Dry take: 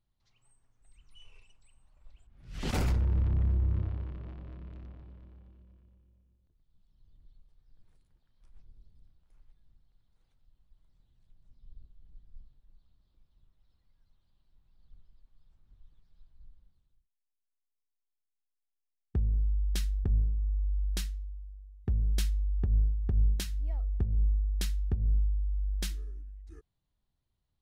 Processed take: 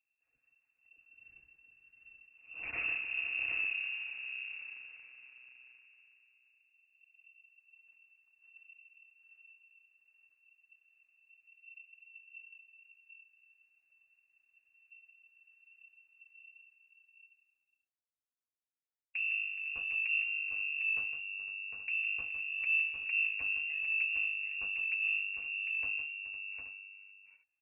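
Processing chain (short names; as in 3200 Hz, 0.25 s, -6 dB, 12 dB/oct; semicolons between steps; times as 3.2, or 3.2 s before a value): minimum comb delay 5 ms; inverted band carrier 2700 Hz; tapped delay 0.158/0.424/0.506/0.754/0.826 s -8.5/-14/-14.5/-6/-13 dB; gain -8 dB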